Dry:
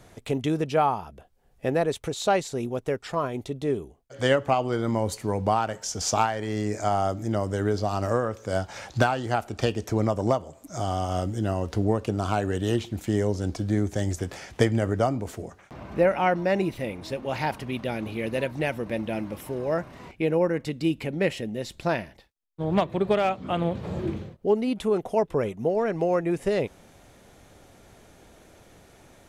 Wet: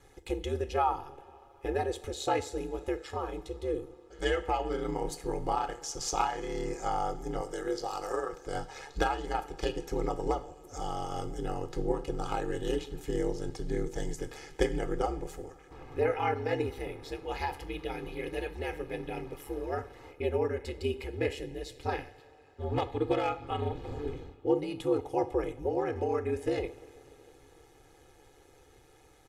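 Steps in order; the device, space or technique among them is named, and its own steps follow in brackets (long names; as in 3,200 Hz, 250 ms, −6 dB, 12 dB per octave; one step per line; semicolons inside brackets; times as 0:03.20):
0:07.41–0:08.33: bass and treble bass −14 dB, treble +5 dB
coupled-rooms reverb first 0.44 s, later 4.2 s, from −18 dB, DRR 9.5 dB
ring-modulated robot voice (ring modulation 72 Hz; comb filter 2.4 ms, depth 86%)
level −6.5 dB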